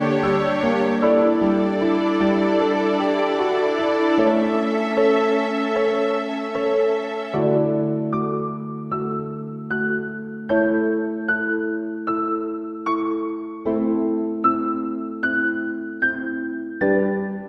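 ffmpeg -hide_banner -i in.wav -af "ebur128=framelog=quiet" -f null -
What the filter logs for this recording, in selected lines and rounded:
Integrated loudness:
  I:         -21.3 LUFS
  Threshold: -31.3 LUFS
Loudness range:
  LRA:         4.7 LU
  Threshold: -41.5 LUFS
  LRA low:   -23.8 LUFS
  LRA high:  -19.1 LUFS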